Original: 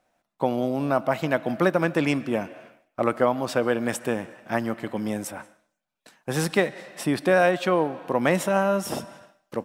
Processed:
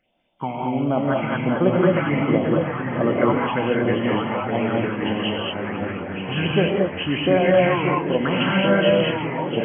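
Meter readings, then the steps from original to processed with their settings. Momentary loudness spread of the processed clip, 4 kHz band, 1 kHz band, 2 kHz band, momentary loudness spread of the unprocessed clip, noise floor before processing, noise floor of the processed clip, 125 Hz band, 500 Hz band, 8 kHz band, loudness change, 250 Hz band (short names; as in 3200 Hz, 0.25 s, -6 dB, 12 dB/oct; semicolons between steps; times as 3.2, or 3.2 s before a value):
9 LU, +9.5 dB, +3.0 dB, +3.5 dB, 11 LU, -78 dBFS, -31 dBFS, +7.5 dB, +4.0 dB, under -40 dB, +4.0 dB, +5.5 dB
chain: nonlinear frequency compression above 2000 Hz 4:1; on a send: thinning echo 1.123 s, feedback 51%, high-pass 390 Hz, level -7.5 dB; on the sum: phaser stages 6, 1.4 Hz, lowest notch 400–2000 Hz; non-linear reverb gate 0.25 s rising, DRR -1.5 dB; echoes that change speed 0.479 s, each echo -2 st, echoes 3, each echo -6 dB; gain +2 dB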